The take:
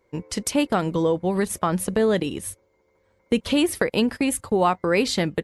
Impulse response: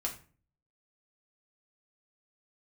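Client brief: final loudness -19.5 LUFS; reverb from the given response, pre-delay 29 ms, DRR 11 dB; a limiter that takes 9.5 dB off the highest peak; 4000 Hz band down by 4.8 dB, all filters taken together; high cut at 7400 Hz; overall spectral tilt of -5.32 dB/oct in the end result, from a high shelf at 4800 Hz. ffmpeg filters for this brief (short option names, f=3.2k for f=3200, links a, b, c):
-filter_complex "[0:a]lowpass=7.4k,equalizer=f=4k:t=o:g=-4.5,highshelf=f=4.8k:g=-4,alimiter=limit=-16dB:level=0:latency=1,asplit=2[a][b];[1:a]atrim=start_sample=2205,adelay=29[c];[b][c]afir=irnorm=-1:irlink=0,volume=-13dB[d];[a][d]amix=inputs=2:normalize=0,volume=6.5dB"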